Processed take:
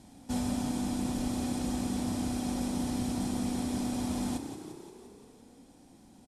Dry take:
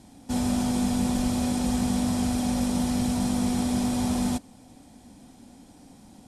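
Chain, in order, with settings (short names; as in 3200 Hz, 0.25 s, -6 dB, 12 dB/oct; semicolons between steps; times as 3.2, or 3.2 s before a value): vocal rider 0.5 s; frequency-shifting echo 0.174 s, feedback 62%, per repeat +32 Hz, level -9 dB; gain -7.5 dB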